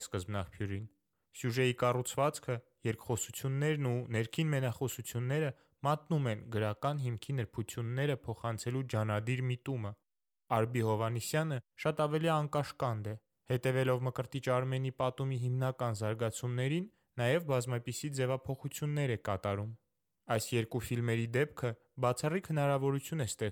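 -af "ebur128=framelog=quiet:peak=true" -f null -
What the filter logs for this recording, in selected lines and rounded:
Integrated loudness:
  I:         -35.1 LUFS
  Threshold: -45.3 LUFS
Loudness range:
  LRA:         2.0 LU
  Threshold: -55.3 LUFS
  LRA low:   -36.4 LUFS
  LRA high:  -34.4 LUFS
True peak:
  Peak:      -15.6 dBFS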